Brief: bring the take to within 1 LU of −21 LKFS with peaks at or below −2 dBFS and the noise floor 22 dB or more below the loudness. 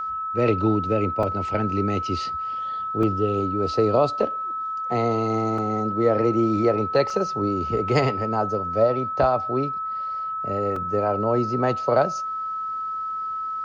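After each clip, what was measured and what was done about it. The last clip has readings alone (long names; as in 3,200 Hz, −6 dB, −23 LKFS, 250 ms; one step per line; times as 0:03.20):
number of dropouts 5; longest dropout 3.6 ms; interfering tone 1,300 Hz; level of the tone −26 dBFS; integrated loudness −23.5 LKFS; sample peak −7.5 dBFS; target loudness −21.0 LKFS
→ repair the gap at 0:01.23/0:03.03/0:05.58/0:07.10/0:10.76, 3.6 ms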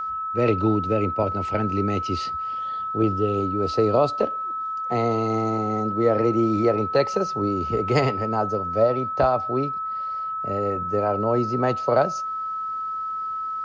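number of dropouts 0; interfering tone 1,300 Hz; level of the tone −26 dBFS
→ notch filter 1,300 Hz, Q 30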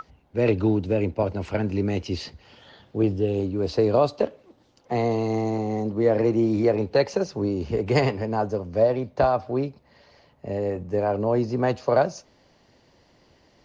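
interfering tone none found; integrated loudness −24.5 LKFS; sample peak −8.0 dBFS; target loudness −21.0 LKFS
→ level +3.5 dB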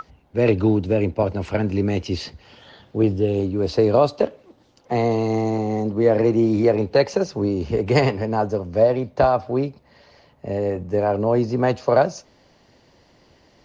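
integrated loudness −21.0 LKFS; sample peak −4.5 dBFS; background noise floor −57 dBFS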